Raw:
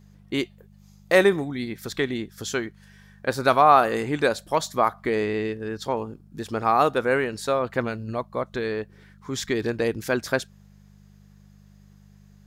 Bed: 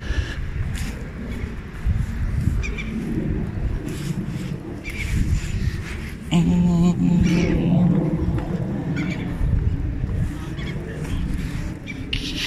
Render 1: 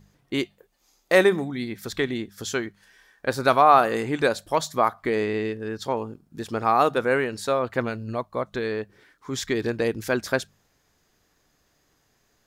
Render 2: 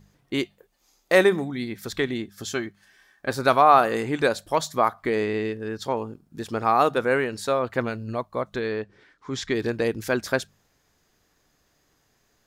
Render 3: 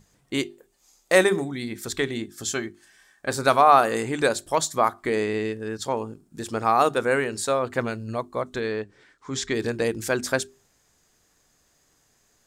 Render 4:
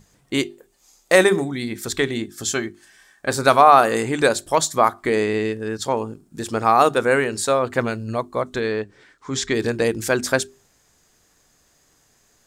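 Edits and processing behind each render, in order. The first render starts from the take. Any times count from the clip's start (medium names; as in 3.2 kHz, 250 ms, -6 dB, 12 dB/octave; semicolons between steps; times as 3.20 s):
de-hum 50 Hz, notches 4
2.22–3.31 s: comb of notches 480 Hz; 8.60–9.54 s: low-pass 5.9 kHz
peaking EQ 8.1 kHz +10.5 dB 0.74 oct; hum notches 50/100/150/200/250/300/350/400 Hz
trim +4.5 dB; peak limiter -1 dBFS, peak gain reduction 2.5 dB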